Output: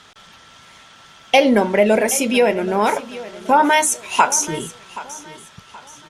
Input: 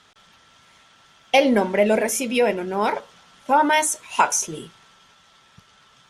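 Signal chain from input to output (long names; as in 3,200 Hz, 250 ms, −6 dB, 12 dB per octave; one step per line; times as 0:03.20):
in parallel at +2.5 dB: downward compressor, threshold −27 dBFS, peak gain reduction 15.5 dB
on the sum: repeating echo 776 ms, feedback 35%, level −17 dB
level +1 dB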